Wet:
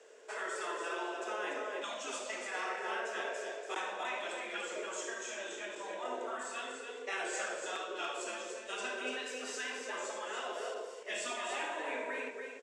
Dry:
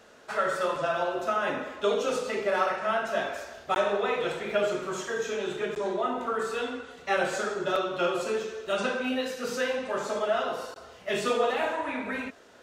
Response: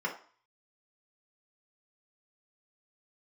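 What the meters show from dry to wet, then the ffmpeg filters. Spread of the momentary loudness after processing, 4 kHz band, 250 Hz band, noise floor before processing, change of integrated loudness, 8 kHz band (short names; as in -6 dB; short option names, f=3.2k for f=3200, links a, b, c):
4 LU, -6.0 dB, -14.0 dB, -52 dBFS, -10.0 dB, -0.5 dB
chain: -filter_complex "[0:a]highpass=f=370:w=0.5412,highpass=f=370:w=1.3066,equalizer=f=430:t=q:w=4:g=10,equalizer=f=790:t=q:w=4:g=-5,equalizer=f=1.3k:t=q:w=4:g=-8,equalizer=f=4.1k:t=q:w=4:g=-7,equalizer=f=7.7k:t=q:w=4:g=8,lowpass=f=9.3k:w=0.5412,lowpass=f=9.3k:w=1.3066,asplit=2[a][b];[b]aecho=0:1:75.8|288.6:0.282|0.501[c];[a][c]amix=inputs=2:normalize=0,afftfilt=real='re*lt(hypot(re,im),0.2)':imag='im*lt(hypot(re,im),0.2)':win_size=1024:overlap=0.75,volume=-5dB"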